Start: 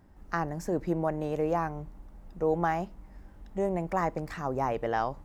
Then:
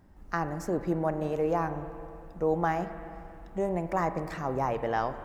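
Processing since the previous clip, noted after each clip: spring tank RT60 2.7 s, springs 39/44/54 ms, chirp 45 ms, DRR 10 dB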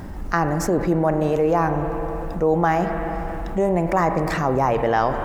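fast leveller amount 50%; gain +7.5 dB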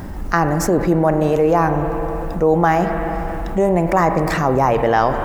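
high shelf 11000 Hz +5 dB; gain +4 dB

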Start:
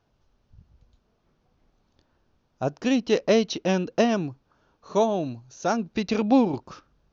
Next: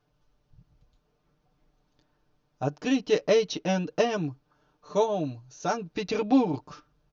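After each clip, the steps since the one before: comb 6.7 ms, depth 80%; gain -4.5 dB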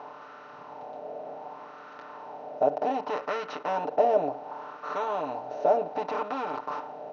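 per-bin compression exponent 0.4; in parallel at 0 dB: limiter -15 dBFS, peak gain reduction 8.5 dB; on the sum: wah 0.66 Hz 650–1300 Hz, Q 3.8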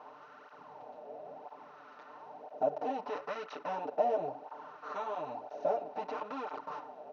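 tape flanging out of phase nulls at 1 Hz, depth 7.4 ms; gain -5 dB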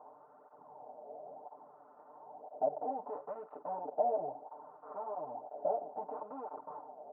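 ladder low-pass 970 Hz, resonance 40%; gain +2 dB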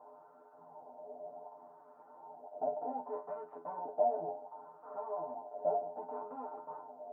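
metallic resonator 83 Hz, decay 0.26 s, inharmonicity 0.002; gain +8 dB

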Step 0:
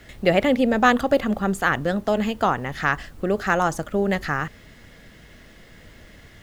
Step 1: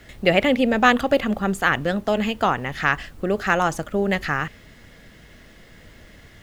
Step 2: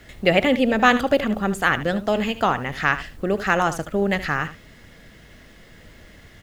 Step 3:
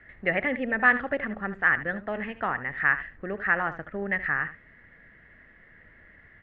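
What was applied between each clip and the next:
dynamic EQ 2600 Hz, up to +6 dB, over -40 dBFS, Q 1.6
echo 75 ms -13.5 dB
ladder low-pass 2000 Hz, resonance 70%

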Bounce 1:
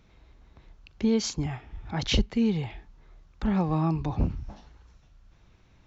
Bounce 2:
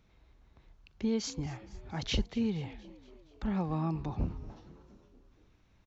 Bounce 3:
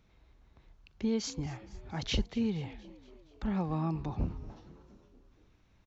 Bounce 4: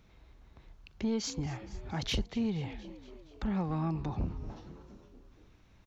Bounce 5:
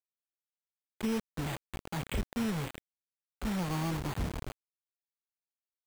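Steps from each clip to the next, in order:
frequency-shifting echo 0.235 s, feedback 59%, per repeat +50 Hz, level -20 dB; gain -7 dB
nothing audible
in parallel at +2 dB: compressor, threshold -38 dBFS, peak gain reduction 13 dB; on the sum: soft clip -20.5 dBFS, distortion -20 dB; gain -2.5 dB
careless resampling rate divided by 8×, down filtered, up hold; requantised 6-bit, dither none; gain -1 dB

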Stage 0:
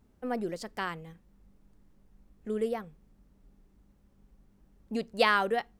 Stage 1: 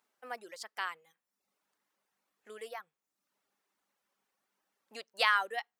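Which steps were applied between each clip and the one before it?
reverb removal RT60 0.65 s; HPF 1000 Hz 12 dB/oct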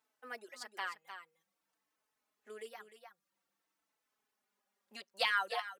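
on a send: echo 0.304 s -9.5 dB; on the sum: endless flanger 4.1 ms -0.51 Hz

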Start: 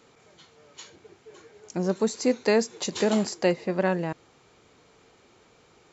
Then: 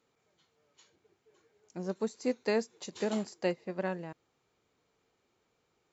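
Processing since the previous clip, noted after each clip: upward expander 1.5:1, over -39 dBFS; gain -7.5 dB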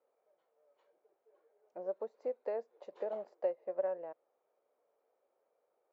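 compressor 4:1, threshold -33 dBFS, peak gain reduction 7.5 dB; ladder band-pass 630 Hz, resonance 65%; gain +8 dB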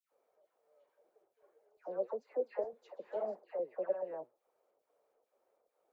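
chopper 2.3 Hz, depth 65%, duty 80%; flange 1.8 Hz, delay 0.1 ms, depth 8.5 ms, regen +74%; dispersion lows, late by 0.122 s, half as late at 1500 Hz; gain +6.5 dB

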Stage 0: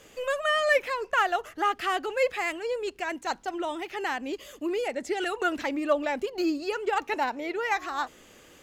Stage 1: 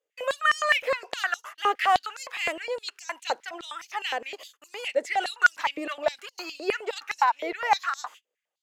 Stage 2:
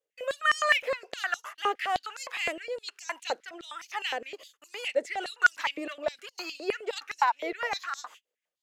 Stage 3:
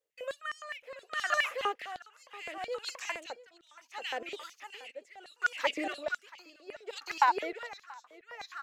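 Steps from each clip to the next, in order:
gate -43 dBFS, range -37 dB; stepped high-pass 9.7 Hz 490–5800 Hz
rotary speaker horn 1.2 Hz, later 6 Hz, at 6.59
echo 0.682 s -6 dB; dB-linear tremolo 0.69 Hz, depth 19 dB

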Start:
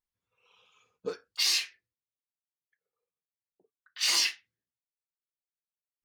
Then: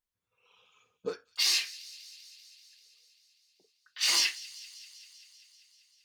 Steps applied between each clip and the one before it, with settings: thin delay 0.195 s, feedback 73%, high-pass 2900 Hz, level -18 dB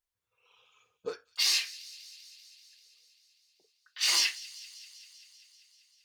bell 210 Hz -10 dB 1 oct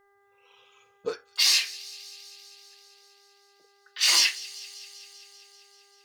buzz 400 Hz, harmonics 5, -70 dBFS -3 dB/oct; gain +5.5 dB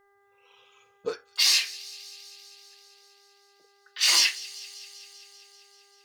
nothing audible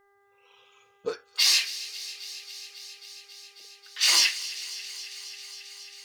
thin delay 0.271 s, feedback 82%, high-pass 1800 Hz, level -16 dB

